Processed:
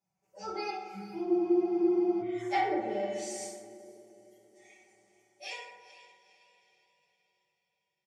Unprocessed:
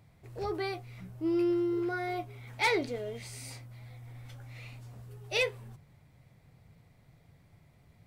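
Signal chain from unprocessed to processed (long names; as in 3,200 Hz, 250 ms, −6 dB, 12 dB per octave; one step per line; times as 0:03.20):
source passing by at 0:01.85, 22 m/s, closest 7.2 metres
Bessel high-pass filter 170 Hz, order 2
treble cut that deepens with the level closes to 320 Hz, closed at −31.5 dBFS
thirty-one-band graphic EQ 250 Hz −12 dB, 800 Hz +9 dB, 2,000 Hz −3 dB, 4,000 Hz −11 dB
noise reduction from a noise print of the clip's start 17 dB
parametric band 6,400 Hz +14 dB 1.2 octaves
comb filter 5.3 ms, depth 85%
feedback delay with all-pass diffusion 459 ms, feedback 46%, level −14 dB
gain on a spectral selection 0:03.47–0:04.55, 690–9,600 Hz −10 dB
convolution reverb RT60 1.3 s, pre-delay 5 ms, DRR −9 dB
frozen spectrum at 0:01.28, 0.94 s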